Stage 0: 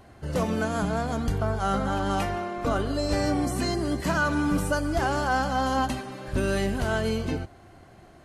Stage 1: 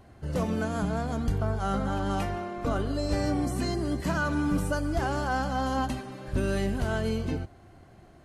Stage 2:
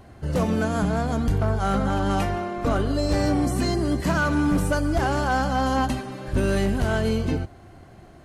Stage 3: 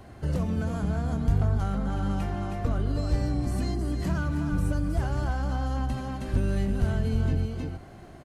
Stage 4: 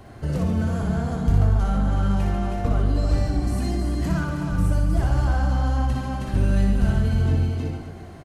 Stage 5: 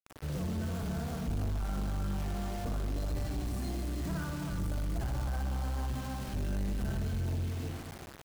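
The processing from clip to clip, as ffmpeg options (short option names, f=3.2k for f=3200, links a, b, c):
-af "lowshelf=f=340:g=5,volume=-5dB"
-af "volume=21.5dB,asoftclip=hard,volume=-21.5dB,volume=6dB"
-filter_complex "[0:a]aecho=1:1:317:0.447,acrossover=split=170[a][b];[b]acompressor=threshold=-34dB:ratio=6[c];[a][c]amix=inputs=2:normalize=0"
-af "aecho=1:1:60|138|239.4|371.2|542.6:0.631|0.398|0.251|0.158|0.1,volume=2.5dB"
-af "acrusher=bits=5:mix=0:aa=0.000001,asoftclip=type=tanh:threshold=-20dB,volume=-9dB"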